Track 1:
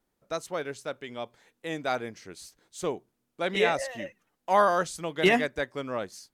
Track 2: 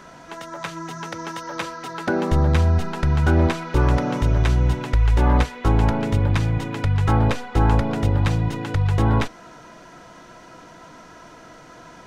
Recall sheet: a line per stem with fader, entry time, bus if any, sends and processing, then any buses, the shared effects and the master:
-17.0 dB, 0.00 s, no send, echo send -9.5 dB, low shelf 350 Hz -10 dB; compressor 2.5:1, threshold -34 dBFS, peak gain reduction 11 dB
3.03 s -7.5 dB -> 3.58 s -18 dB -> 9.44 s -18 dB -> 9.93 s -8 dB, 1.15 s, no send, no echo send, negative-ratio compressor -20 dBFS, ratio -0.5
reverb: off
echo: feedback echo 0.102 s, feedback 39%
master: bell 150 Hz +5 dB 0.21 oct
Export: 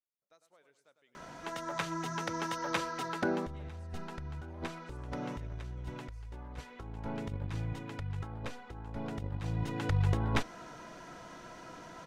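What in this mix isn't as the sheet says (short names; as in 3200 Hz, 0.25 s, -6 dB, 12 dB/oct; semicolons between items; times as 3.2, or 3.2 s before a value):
stem 1 -17.0 dB -> -27.5 dB; master: missing bell 150 Hz +5 dB 0.21 oct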